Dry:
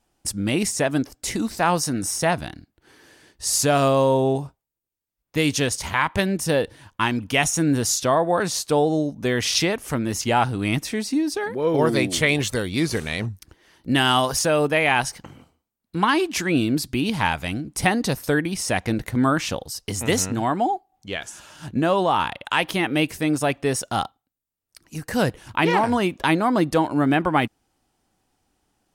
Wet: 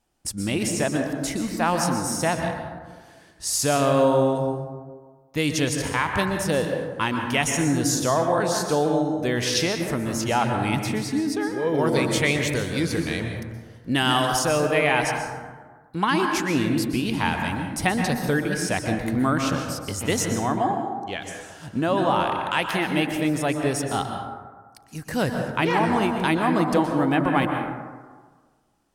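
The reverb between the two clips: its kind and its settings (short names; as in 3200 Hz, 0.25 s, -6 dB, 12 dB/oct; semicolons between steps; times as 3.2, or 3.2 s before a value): plate-style reverb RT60 1.5 s, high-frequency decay 0.35×, pre-delay 0.11 s, DRR 3.5 dB; gain -3 dB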